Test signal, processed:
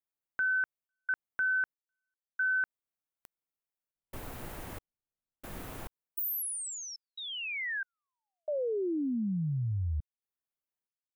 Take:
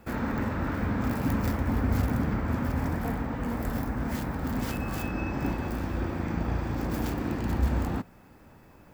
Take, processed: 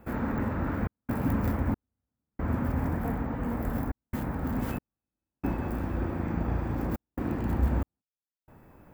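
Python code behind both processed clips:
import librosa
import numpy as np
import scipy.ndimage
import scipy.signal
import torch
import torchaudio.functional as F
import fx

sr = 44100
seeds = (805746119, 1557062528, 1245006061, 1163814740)

y = fx.peak_eq(x, sr, hz=5100.0, db=-11.5, octaves=1.9)
y = fx.step_gate(y, sr, bpm=69, pattern='xxxx.xxx...xxx', floor_db=-60.0, edge_ms=4.5)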